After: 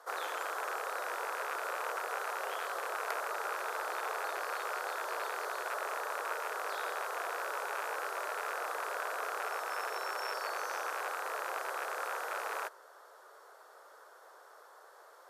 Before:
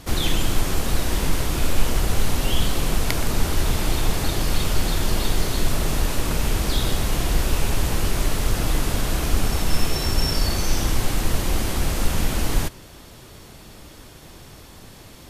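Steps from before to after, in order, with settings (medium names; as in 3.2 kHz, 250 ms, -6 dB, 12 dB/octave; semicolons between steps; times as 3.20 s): rattle on loud lows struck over -27 dBFS, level -11 dBFS; steep high-pass 440 Hz 48 dB/octave; resonant high shelf 1.9 kHz -10 dB, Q 3; trim -8 dB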